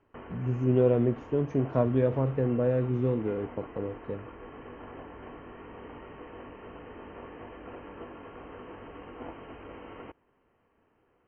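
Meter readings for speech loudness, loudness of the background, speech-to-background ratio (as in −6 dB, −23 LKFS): −28.0 LKFS, −45.5 LKFS, 17.5 dB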